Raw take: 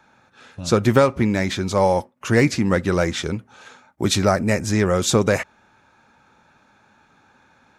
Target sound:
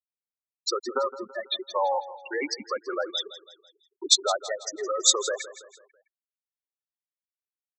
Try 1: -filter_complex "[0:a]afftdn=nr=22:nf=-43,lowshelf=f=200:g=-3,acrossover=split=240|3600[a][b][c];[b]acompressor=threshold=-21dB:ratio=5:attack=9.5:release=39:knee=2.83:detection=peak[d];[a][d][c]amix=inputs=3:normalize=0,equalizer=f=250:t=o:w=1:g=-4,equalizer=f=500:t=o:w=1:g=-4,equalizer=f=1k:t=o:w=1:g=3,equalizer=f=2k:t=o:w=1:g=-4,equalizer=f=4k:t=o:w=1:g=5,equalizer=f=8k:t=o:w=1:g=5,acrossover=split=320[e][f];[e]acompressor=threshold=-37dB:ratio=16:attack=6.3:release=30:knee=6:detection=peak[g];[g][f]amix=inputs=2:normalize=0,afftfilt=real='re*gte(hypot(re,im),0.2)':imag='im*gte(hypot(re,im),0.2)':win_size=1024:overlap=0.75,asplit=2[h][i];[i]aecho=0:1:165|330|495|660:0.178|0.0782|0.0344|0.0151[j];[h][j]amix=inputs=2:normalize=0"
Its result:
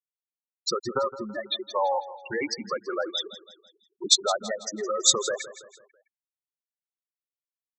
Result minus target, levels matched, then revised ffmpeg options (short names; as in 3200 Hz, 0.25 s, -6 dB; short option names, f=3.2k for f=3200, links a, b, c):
compressor: peak gain reduction -8.5 dB
-filter_complex "[0:a]afftdn=nr=22:nf=-43,lowshelf=f=200:g=-3,acrossover=split=240|3600[a][b][c];[b]acompressor=threshold=-21dB:ratio=5:attack=9.5:release=39:knee=2.83:detection=peak[d];[a][d][c]amix=inputs=3:normalize=0,equalizer=f=250:t=o:w=1:g=-4,equalizer=f=500:t=o:w=1:g=-4,equalizer=f=1k:t=o:w=1:g=3,equalizer=f=2k:t=o:w=1:g=-4,equalizer=f=4k:t=o:w=1:g=5,equalizer=f=8k:t=o:w=1:g=5,acrossover=split=320[e][f];[e]acompressor=threshold=-46dB:ratio=16:attack=6.3:release=30:knee=6:detection=peak[g];[g][f]amix=inputs=2:normalize=0,afftfilt=real='re*gte(hypot(re,im),0.2)':imag='im*gte(hypot(re,im),0.2)':win_size=1024:overlap=0.75,asplit=2[h][i];[i]aecho=0:1:165|330|495|660:0.178|0.0782|0.0344|0.0151[j];[h][j]amix=inputs=2:normalize=0"